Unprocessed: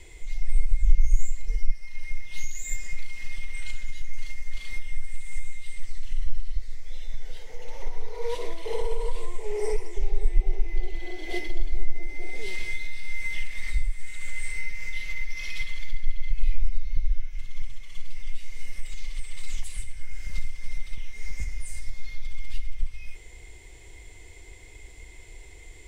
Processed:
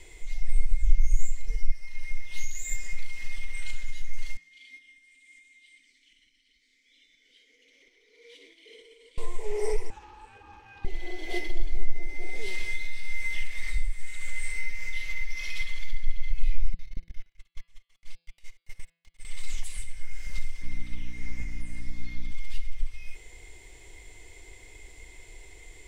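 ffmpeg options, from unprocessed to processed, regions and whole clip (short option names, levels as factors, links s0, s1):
-filter_complex "[0:a]asettb=1/sr,asplit=3[s0][s1][s2];[s0]atrim=end=4.374[s3];[s1]atrim=start=4.37:end=9.18,asetpts=PTS-STARTPTS,afade=t=in:d=0.004:c=qsin,afade=t=out:st=4.806:d=0.004:c=qsin,asplit=3[s4][s5][s6];[s4]bandpass=f=270:t=q:w=8,volume=1[s7];[s5]bandpass=f=2290:t=q:w=8,volume=0.501[s8];[s6]bandpass=f=3010:t=q:w=8,volume=0.355[s9];[s7][s8][s9]amix=inputs=3:normalize=0,bass=f=250:g=-11,treble=f=4000:g=13[s10];[s2]atrim=start=9.176[s11];[s3][s10]acrossfade=d=0.004:c1=hsin:c2=qsin[s12];[s12][s11]acrossfade=d=0.004:c1=qsin:c2=hsin,asettb=1/sr,asplit=3[s13][s14][s15];[s13]atrim=end=9.904[s16];[s14]atrim=start=9.9:end=10.85,asetpts=PTS-STARTPTS,afade=t=in:d=0.004:c=qsin,afade=t=out:st=0.946:d=0.004:c=qsin,highpass=290,aemphasis=mode=reproduction:type=50kf,aeval=exprs='val(0)*sin(2*PI*450*n/s)':c=same[s17];[s15]atrim=start=10.846[s18];[s16][s17]acrossfade=d=0.004:c1=hsin:c2=qsin[s19];[s19][s18]acrossfade=d=0.004:c1=qsin:c2=hsin,asettb=1/sr,asplit=3[s20][s21][s22];[s20]atrim=end=16.744[s23];[s21]atrim=start=16.74:end=19.25,asetpts=PTS-STARTPTS,afade=t=in:d=0.004:c=qsin,afade=t=out:st=2.506:d=0.004:c=qsin,agate=range=0.141:threshold=0.0794:ratio=16:release=100:detection=peak,lowshelf=f=200:g=-9,aeval=exprs='max(val(0),0)':c=same[s24];[s22]atrim=start=19.246[s25];[s23][s24]acrossfade=d=0.004:c1=hsin:c2=qsin[s26];[s26][s25]acrossfade=d=0.004:c1=qsin:c2=hsin,asettb=1/sr,asplit=3[s27][s28][s29];[s27]atrim=end=20.624[s30];[s28]atrim=start=20.62:end=22.32,asetpts=PTS-STARTPTS,afade=t=in:d=0.004:c=qsin,afade=t=out:st=1.696:d=0.004:c=qsin,acrossover=split=3500[s31][s32];[s32]acompressor=threshold=0.00126:ratio=4:attack=1:release=60[s33];[s31][s33]amix=inputs=2:normalize=0,aeval=exprs='val(0)+0.0126*(sin(2*PI*60*n/s)+sin(2*PI*2*60*n/s)/2+sin(2*PI*3*60*n/s)/3+sin(2*PI*4*60*n/s)/4+sin(2*PI*5*60*n/s)/5)':c=same[s34];[s29]atrim=start=22.316[s35];[s30][s34]acrossfade=d=0.004:c1=hsin:c2=qsin[s36];[s36][s35]acrossfade=d=0.004:c1=qsin:c2=hsin,equalizer=f=70:t=o:w=2.9:g=-5,bandreject=f=168.1:t=h:w=4,bandreject=f=336.2:t=h:w=4,bandreject=f=504.3:t=h:w=4,bandreject=f=672.4:t=h:w=4,bandreject=f=840.5:t=h:w=4,bandreject=f=1008.6:t=h:w=4,bandreject=f=1176.7:t=h:w=4,bandreject=f=1344.8:t=h:w=4,bandreject=f=1512.9:t=h:w=4,bandreject=f=1681:t=h:w=4,bandreject=f=1849.1:t=h:w=4,bandreject=f=2017.2:t=h:w=4,bandreject=f=2185.3:t=h:w=4,bandreject=f=2353.4:t=h:w=4,bandreject=f=2521.5:t=h:w=4,bandreject=f=2689.6:t=h:w=4,bandreject=f=2857.7:t=h:w=4,bandreject=f=3025.8:t=h:w=4,bandreject=f=3193.9:t=h:w=4,bandreject=f=3362:t=h:w=4,bandreject=f=3530.1:t=h:w=4,bandreject=f=3698.2:t=h:w=4,bandreject=f=3866.3:t=h:w=4,bandreject=f=4034.4:t=h:w=4,bandreject=f=4202.5:t=h:w=4,bandreject=f=4370.6:t=h:w=4,bandreject=f=4538.7:t=h:w=4,bandreject=f=4706.8:t=h:w=4,bandreject=f=4874.9:t=h:w=4,bandreject=f=5043:t=h:w=4"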